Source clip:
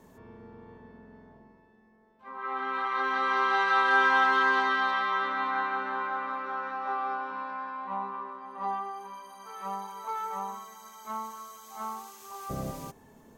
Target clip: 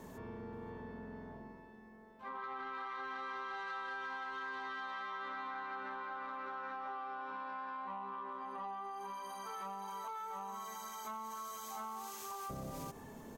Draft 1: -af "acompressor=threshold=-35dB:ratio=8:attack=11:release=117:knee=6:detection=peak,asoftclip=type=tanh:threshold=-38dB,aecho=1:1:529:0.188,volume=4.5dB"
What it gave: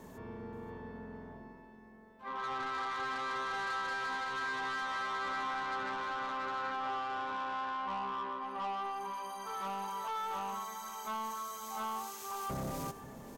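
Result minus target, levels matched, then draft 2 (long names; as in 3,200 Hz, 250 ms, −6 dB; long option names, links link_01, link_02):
downward compressor: peak gain reduction −9.5 dB; echo-to-direct +9 dB
-af "acompressor=threshold=-46dB:ratio=8:attack=11:release=117:knee=6:detection=peak,asoftclip=type=tanh:threshold=-38dB,aecho=1:1:529:0.0668,volume=4.5dB"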